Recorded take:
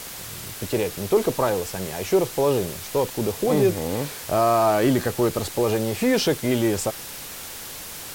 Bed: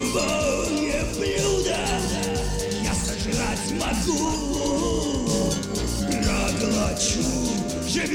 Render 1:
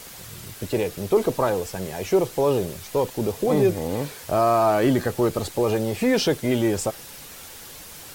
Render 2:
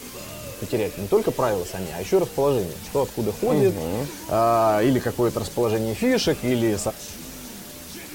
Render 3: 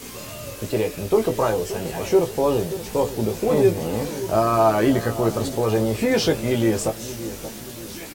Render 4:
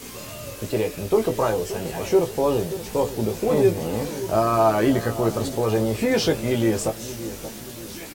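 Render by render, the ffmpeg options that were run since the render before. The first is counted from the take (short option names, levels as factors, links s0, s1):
-af "afftdn=nr=6:nf=-37"
-filter_complex "[1:a]volume=0.158[s0];[0:a][s0]amix=inputs=2:normalize=0"
-filter_complex "[0:a]asplit=2[s0][s1];[s1]adelay=18,volume=0.531[s2];[s0][s2]amix=inputs=2:normalize=0,asplit=2[s3][s4];[s4]adelay=577,lowpass=f=930:p=1,volume=0.251,asplit=2[s5][s6];[s6]adelay=577,lowpass=f=930:p=1,volume=0.48,asplit=2[s7][s8];[s8]adelay=577,lowpass=f=930:p=1,volume=0.48,asplit=2[s9][s10];[s10]adelay=577,lowpass=f=930:p=1,volume=0.48,asplit=2[s11][s12];[s12]adelay=577,lowpass=f=930:p=1,volume=0.48[s13];[s3][s5][s7][s9][s11][s13]amix=inputs=6:normalize=0"
-af "volume=0.891"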